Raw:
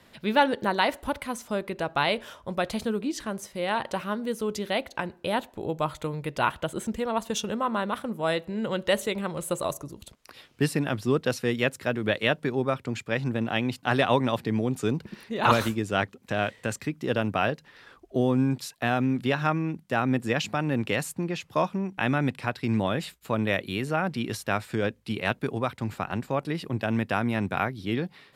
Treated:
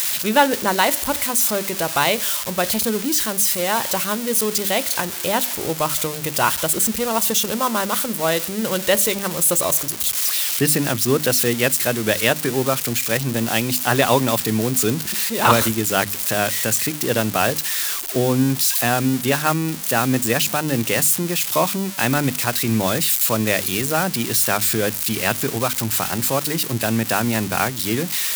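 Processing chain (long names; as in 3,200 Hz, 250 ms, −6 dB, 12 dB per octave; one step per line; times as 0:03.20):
spike at every zero crossing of −18.5 dBFS
mains-hum notches 50/100/150/200/250/300 Hz
level +6 dB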